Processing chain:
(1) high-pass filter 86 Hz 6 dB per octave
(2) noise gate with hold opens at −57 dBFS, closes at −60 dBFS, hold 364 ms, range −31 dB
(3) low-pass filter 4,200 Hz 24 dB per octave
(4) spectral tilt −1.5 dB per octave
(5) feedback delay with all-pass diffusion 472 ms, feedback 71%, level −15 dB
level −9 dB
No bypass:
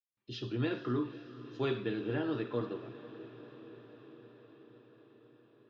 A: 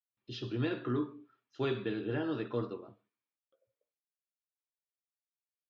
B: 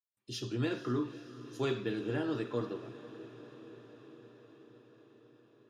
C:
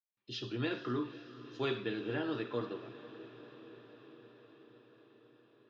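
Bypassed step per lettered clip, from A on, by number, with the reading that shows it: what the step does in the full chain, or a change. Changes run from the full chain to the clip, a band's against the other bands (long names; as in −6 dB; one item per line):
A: 5, echo-to-direct ratio −12.0 dB to none audible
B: 3, 4 kHz band +1.5 dB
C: 4, 125 Hz band −4.5 dB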